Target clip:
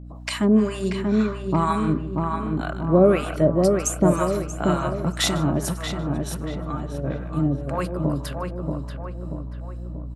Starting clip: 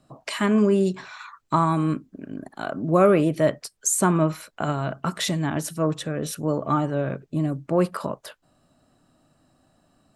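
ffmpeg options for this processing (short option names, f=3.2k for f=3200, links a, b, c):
-filter_complex "[0:a]aecho=1:1:153|306|459:0.2|0.0619|0.0192,asplit=3[a][b][c];[a]afade=t=out:st=5.72:d=0.02[d];[b]acompressor=threshold=-32dB:ratio=6,afade=t=in:st=5.72:d=0.02,afade=t=out:st=7.03:d=0.02[e];[c]afade=t=in:st=7.03:d=0.02[f];[d][e][f]amix=inputs=3:normalize=0,acrossover=split=720[g][h];[g]aeval=exprs='val(0)*(1-1/2+1/2*cos(2*PI*2*n/s))':c=same[i];[h]aeval=exprs='val(0)*(1-1/2-1/2*cos(2*PI*2*n/s))':c=same[j];[i][j]amix=inputs=2:normalize=0,aeval=exprs='val(0)+0.00794*(sin(2*PI*60*n/s)+sin(2*PI*2*60*n/s)/2+sin(2*PI*3*60*n/s)/3+sin(2*PI*4*60*n/s)/4+sin(2*PI*5*60*n/s)/5)':c=same,asplit=2[k][l];[l]adelay=634,lowpass=f=2k:p=1,volume=-3.5dB,asplit=2[m][n];[n]adelay=634,lowpass=f=2k:p=1,volume=0.51,asplit=2[o][p];[p]adelay=634,lowpass=f=2k:p=1,volume=0.51,asplit=2[q][r];[r]adelay=634,lowpass=f=2k:p=1,volume=0.51,asplit=2[s][t];[t]adelay=634,lowpass=f=2k:p=1,volume=0.51,asplit=2[u][v];[v]adelay=634,lowpass=f=2k:p=1,volume=0.51,asplit=2[w][x];[x]adelay=634,lowpass=f=2k:p=1,volume=0.51[y];[m][o][q][s][u][w][y]amix=inputs=7:normalize=0[z];[k][z]amix=inputs=2:normalize=0,volume=4.5dB"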